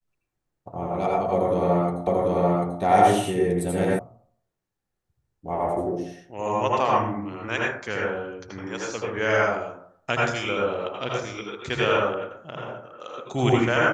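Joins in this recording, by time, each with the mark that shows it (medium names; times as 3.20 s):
2.07 s: repeat of the last 0.74 s
3.99 s: sound stops dead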